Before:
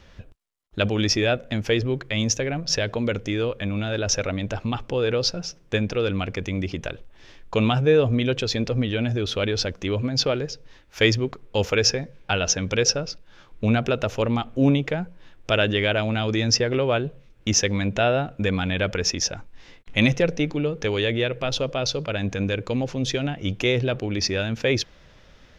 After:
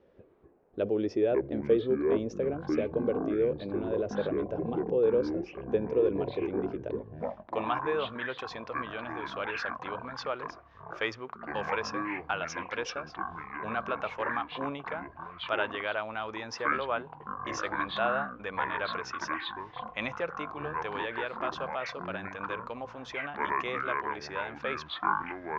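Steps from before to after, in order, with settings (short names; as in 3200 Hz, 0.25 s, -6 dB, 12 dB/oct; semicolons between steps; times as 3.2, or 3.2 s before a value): echoes that change speed 0.152 s, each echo -7 st, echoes 3; band-pass sweep 420 Hz -> 1100 Hz, 7.05–7.74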